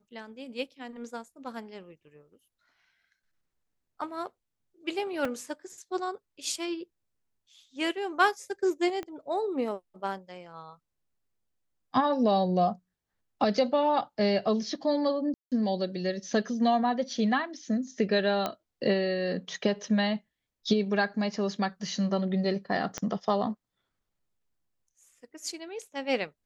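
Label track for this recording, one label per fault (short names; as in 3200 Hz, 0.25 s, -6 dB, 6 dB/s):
5.250000	5.250000	gap 2.7 ms
9.030000	9.030000	pop -24 dBFS
15.340000	15.520000	gap 0.177 s
18.460000	18.460000	pop -15 dBFS
22.980000	22.980000	pop -17 dBFS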